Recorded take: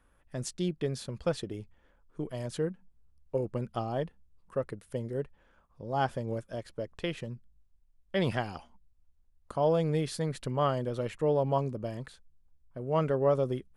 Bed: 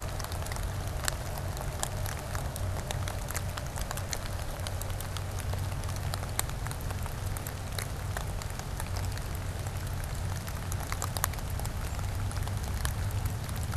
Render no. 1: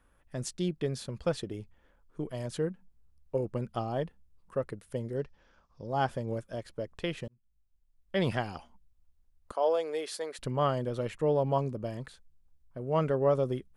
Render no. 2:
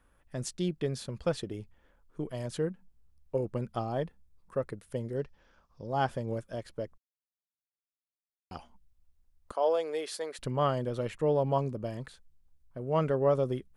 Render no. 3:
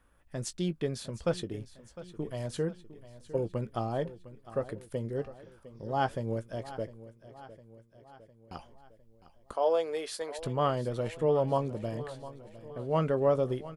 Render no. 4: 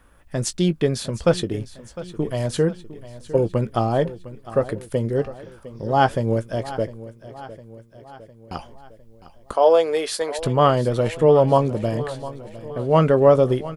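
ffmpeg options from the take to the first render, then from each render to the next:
-filter_complex "[0:a]asettb=1/sr,asplit=3[a][b][c];[a]atrim=end=5.164[d];[b]atrim=start=5.16:end=5.87,asetpts=PTS-STARTPTS,afade=t=in:d=0.004:c=qsin,afade=t=out:st=0.706:d=0.004:c=qsin,lowpass=f=5.4k:t=q:w=4.1[e];[c]atrim=start=5.866[f];[d][e]acrossfade=d=0.004:c1=hsin:c2=qsin[g];[g][f]acrossfade=d=0.004:c1=qsin:c2=hsin,asettb=1/sr,asplit=3[h][i][j];[h]atrim=end=9.524[k];[i]atrim=start=9.52:end=10.39,asetpts=PTS-STARTPTS,afade=t=in:d=0.004:c=qsin,afade=t=out:st=0.866:d=0.004:c=qsin,highpass=f=390:w=0.5412,highpass=f=390:w=1.3066[l];[j]atrim=start=10.386[m];[k][l]acrossfade=d=0.004:c1=hsin:c2=qsin[n];[n][m]acrossfade=d=0.004:c1=qsin:c2=hsin,asplit=2[o][p];[o]atrim=end=7.28,asetpts=PTS-STARTPTS,afade=t=out:st=7.276:d=0.004:c=hsin[q];[p]atrim=start=7.28,asetpts=PTS-STARTPTS,afade=t=in:d=0.89[r];[q][r]concat=n=2:v=0:a=1"
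-filter_complex "[0:a]asettb=1/sr,asplit=3[a][b][c];[a]atrim=end=3.684[d];[b]atrim=start=3.68:end=4.75,asetpts=PTS-STARTPTS,afade=t=in:d=0.004:c=qsin,afade=t=out:st=1.066:d=0.004:c=qsin,bandreject=f=2.9k:w=12[e];[c]atrim=start=4.746[f];[d][e]acrossfade=d=0.004:c1=hsin:c2=qsin[g];[g][f]acrossfade=d=0.004:c1=qsin:c2=hsin,asplit=3[h][i][j];[h]atrim=end=6.98,asetpts=PTS-STARTPTS,afade=t=out:st=6.976:d=0.004:c=hsin[k];[i]atrim=start=6.98:end=8.51,asetpts=PTS-STARTPTS,volume=0[l];[j]atrim=start=8.51,asetpts=PTS-STARTPTS,afade=t=in:d=0.004:c=hsin[m];[k][l][m]concat=n=3:v=0:a=1"
-filter_complex "[0:a]asplit=2[a][b];[b]adelay=18,volume=-13dB[c];[a][c]amix=inputs=2:normalize=0,aecho=1:1:706|1412|2118|2824|3530:0.158|0.0888|0.0497|0.0278|0.0156"
-af "volume=12dB"

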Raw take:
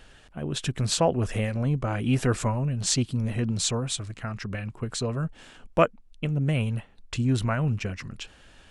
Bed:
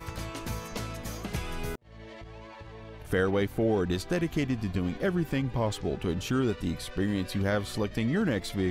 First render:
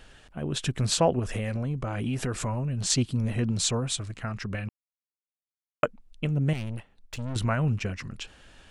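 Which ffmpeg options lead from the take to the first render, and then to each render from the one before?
-filter_complex "[0:a]asettb=1/sr,asplit=3[a][b][c];[a]atrim=end=1.194[d];[b]atrim=start=1.19:end=2.9,asetpts=PTS-STARTPTS,afade=t=in:d=0.004:c=qsin,afade=t=out:st=1.706:d=0.004:c=qsin,acompressor=threshold=-25dB:ratio=6:attack=3.2:release=140:knee=1:detection=peak[e];[c]atrim=start=2.896[f];[d][e]acrossfade=d=0.004:c1=hsin:c2=qsin[g];[g][f]acrossfade=d=0.004:c1=qsin:c2=hsin,asettb=1/sr,asplit=3[h][i][j];[h]atrim=end=6.534[k];[i]atrim=start=6.53:end=7.36,asetpts=PTS-STARTPTS,afade=t=in:d=0.004:c=qsin,afade=t=out:st=0.826:d=0.004:c=qsin,aeval=exprs='(tanh(35.5*val(0)+0.8)-tanh(0.8))/35.5':c=same[l];[j]atrim=start=7.356[m];[k][l]acrossfade=d=0.004:c1=hsin:c2=qsin[n];[n][m]acrossfade=d=0.004:c1=qsin:c2=hsin,asplit=3[o][p][q];[o]atrim=end=4.69,asetpts=PTS-STARTPTS,afade=t=out:st=4.686:d=0.004:c=hsin[r];[p]atrim=start=4.69:end=5.83,asetpts=PTS-STARTPTS,volume=0[s];[q]atrim=start=5.83,asetpts=PTS-STARTPTS,afade=t=in:d=0.004:c=hsin[t];[r][s][t]concat=n=3:v=0:a=1"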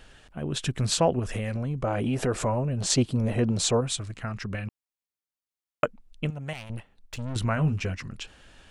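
-filter_complex "[0:a]asettb=1/sr,asplit=3[a][b][c];[a]atrim=end=1.834[d];[b]atrim=start=1.83:end=3.81,asetpts=PTS-STARTPTS,afade=t=in:d=0.004:c=qsin,afade=t=out:st=1.976:d=0.004:c=qsin,equalizer=f=570:w=0.78:g=9[e];[c]atrim=start=3.806[f];[d][e]acrossfade=d=0.004:c1=hsin:c2=qsin[g];[g][f]acrossfade=d=0.004:c1=qsin:c2=hsin,asettb=1/sr,asplit=3[h][i][j];[h]atrim=end=6.304[k];[i]atrim=start=6.3:end=6.7,asetpts=PTS-STARTPTS,afade=t=in:d=0.004:c=qsin,afade=t=out:st=0.396:d=0.004:c=qsin,lowshelf=f=510:t=q:w=1.5:g=-11[l];[j]atrim=start=6.696[m];[k][l]acrossfade=d=0.004:c1=hsin:c2=qsin[n];[n][m]acrossfade=d=0.004:c1=qsin:c2=hsin,asettb=1/sr,asplit=3[o][p][q];[o]atrim=end=7.554[r];[p]atrim=start=7.55:end=7.95,asetpts=PTS-STARTPTS,afade=t=in:d=0.004:c=qsin,afade=t=out:st=0.396:d=0.004:c=qsin,asplit=2[s][t];[t]adelay=12,volume=-5.5dB[u];[s][u]amix=inputs=2:normalize=0,atrim=end_sample=17640[v];[q]atrim=start=7.946[w];[r][v]acrossfade=d=0.004:c1=hsin:c2=qsin[x];[x][w]acrossfade=d=0.004:c1=qsin:c2=hsin"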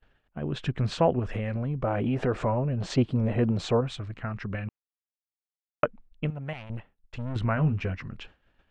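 -af "lowpass=2.5k,agate=range=-33dB:threshold=-42dB:ratio=3:detection=peak"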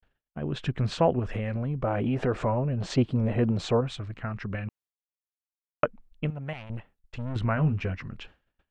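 -af "agate=range=-33dB:threshold=-55dB:ratio=3:detection=peak"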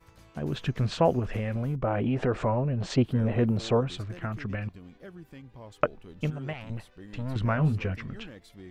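-filter_complex "[1:a]volume=-18dB[a];[0:a][a]amix=inputs=2:normalize=0"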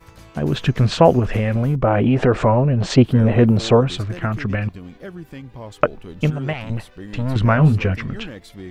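-af "volume=11dB,alimiter=limit=-1dB:level=0:latency=1"

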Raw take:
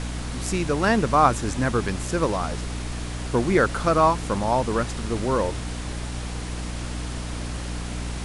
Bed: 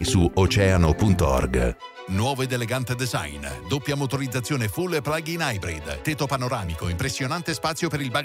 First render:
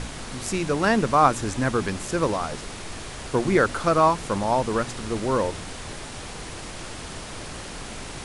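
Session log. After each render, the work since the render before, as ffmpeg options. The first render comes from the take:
-af "bandreject=f=60:t=h:w=4,bandreject=f=120:t=h:w=4,bandreject=f=180:t=h:w=4,bandreject=f=240:t=h:w=4,bandreject=f=300:t=h:w=4"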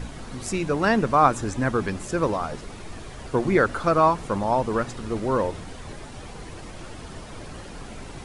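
-af "afftdn=nr=9:nf=-37"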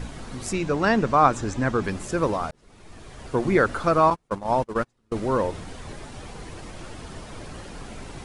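-filter_complex "[0:a]asettb=1/sr,asplit=3[a][b][c];[a]atrim=end=0.534[d];[b]atrim=start=0.53:end=1.84,asetpts=PTS-STARTPTS,afade=t=in:d=0.004:c=qsin,afade=t=out:st=1.306:d=0.004:c=qsin,lowpass=f=8.3k:w=0.5412,lowpass=f=8.3k:w=1.3066[e];[c]atrim=start=1.836[f];[d][e]acrossfade=d=0.004:c1=hsin:c2=qsin[g];[g][f]acrossfade=d=0.004:c1=qsin:c2=hsin,asettb=1/sr,asplit=3[h][i][j];[h]atrim=end=4.104[k];[i]atrim=start=4.1:end=5.12,asetpts=PTS-STARTPTS,afade=t=in:d=0.004:c=qsin,afade=t=out:st=1.016:d=0.004:c=qsin,agate=range=-35dB:threshold=-25dB:ratio=16:release=100:detection=peak[l];[j]atrim=start=5.116[m];[k][l]acrossfade=d=0.004:c1=hsin:c2=qsin[n];[n][m]acrossfade=d=0.004:c1=qsin:c2=hsin,asplit=2[o][p];[o]atrim=end=2.51,asetpts=PTS-STARTPTS,afade=t=out:st=2.506:d=0.004:c=hsin[q];[p]atrim=start=2.51,asetpts=PTS-STARTPTS,afade=t=in:d=0.95[r];[q][r]concat=n=2:v=0:a=1"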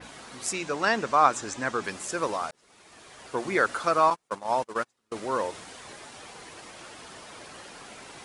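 -af "highpass=f=810:p=1,adynamicequalizer=threshold=0.00447:dfrequency=7900:dqfactor=0.74:tfrequency=7900:tqfactor=0.74:attack=5:release=100:ratio=0.375:range=2:mode=boostabove:tftype=bell"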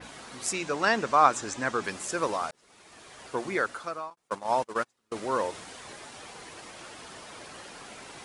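-filter_complex "[0:a]asplit=2[a][b];[a]atrim=end=4.17,asetpts=PTS-STARTPTS,afade=t=out:st=3.24:d=0.93[c];[b]atrim=start=4.17,asetpts=PTS-STARTPTS,afade=t=in:d=0.004:c=hsin[d];[c][d]concat=n=2:v=0:a=1"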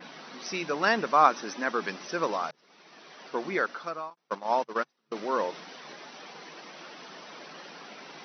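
-af "afftfilt=real='re*between(b*sr/4096,140,6100)':imag='im*between(b*sr/4096,140,6100)':win_size=4096:overlap=0.75"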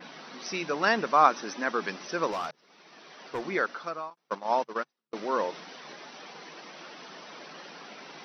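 -filter_complex "[0:a]asettb=1/sr,asplit=3[a][b][c];[a]atrim=end=2.314[d];[b]atrim=start=2.31:end=3.46,asetpts=PTS-STARTPTS,afade=t=in:d=0.004:c=qsin,afade=t=out:st=1.146:d=0.004:c=qsin,asoftclip=type=hard:threshold=-27dB[e];[c]atrim=start=3.456[f];[d][e]acrossfade=d=0.004:c1=hsin:c2=qsin[g];[g][f]acrossfade=d=0.004:c1=qsin:c2=hsin,asplit=2[h][i];[h]atrim=end=5.13,asetpts=PTS-STARTPTS,afade=t=out:st=4.67:d=0.46[j];[i]atrim=start=5.13,asetpts=PTS-STARTPTS,afade=t=in:d=0.004:c=hsin[k];[j][k]concat=n=2:v=0:a=1"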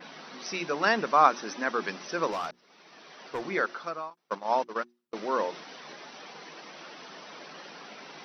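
-af "bandreject=f=60:t=h:w=6,bandreject=f=120:t=h:w=6,bandreject=f=180:t=h:w=6,bandreject=f=240:t=h:w=6,bandreject=f=300:t=h:w=6,bandreject=f=360:t=h:w=6"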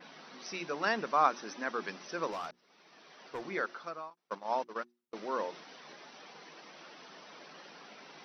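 -af "volume=-6.5dB"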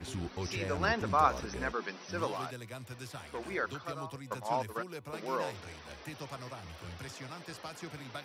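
-filter_complex "[1:a]volume=-19.5dB[a];[0:a][a]amix=inputs=2:normalize=0"

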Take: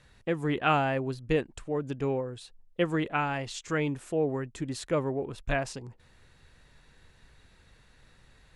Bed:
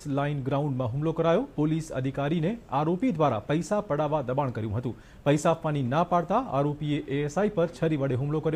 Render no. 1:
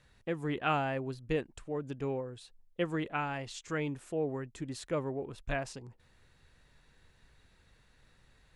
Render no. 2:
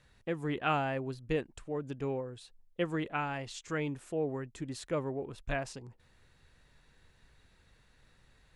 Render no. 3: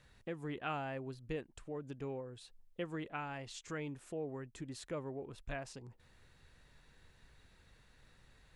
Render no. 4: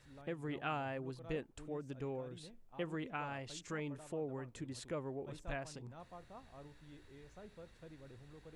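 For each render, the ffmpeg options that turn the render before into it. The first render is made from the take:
-af "volume=-5.5dB"
-af anull
-af "acompressor=threshold=-52dB:ratio=1.5"
-filter_complex "[1:a]volume=-29.5dB[a];[0:a][a]amix=inputs=2:normalize=0"

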